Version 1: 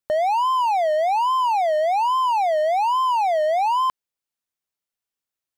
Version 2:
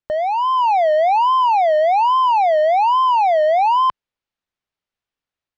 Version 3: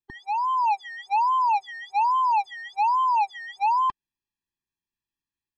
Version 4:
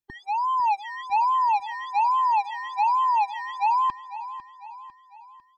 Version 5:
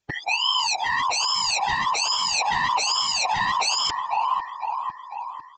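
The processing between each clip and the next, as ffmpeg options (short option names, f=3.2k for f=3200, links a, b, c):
-af "lowpass=3.8k,lowshelf=f=90:g=7,dynaudnorm=f=340:g=3:m=5dB"
-af "equalizer=f=1.1k:t=o:w=1:g=-5,afftfilt=real='re*eq(mod(floor(b*sr/1024/390),2),0)':imag='im*eq(mod(floor(b*sr/1024/390),2),0)':win_size=1024:overlap=0.75,volume=-2dB"
-af "aecho=1:1:500|1000|1500|2000|2500:0.2|0.0958|0.046|0.0221|0.0106"
-af "aresample=16000,aeval=exprs='0.2*sin(PI/2*6.31*val(0)/0.2)':c=same,aresample=44100,afftfilt=real='hypot(re,im)*cos(2*PI*random(0))':imag='hypot(re,im)*sin(2*PI*random(1))':win_size=512:overlap=0.75"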